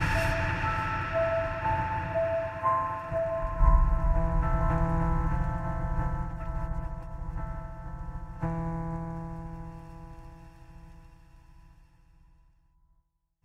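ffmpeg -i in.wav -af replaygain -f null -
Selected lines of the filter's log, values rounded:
track_gain = +13.1 dB
track_peak = 0.242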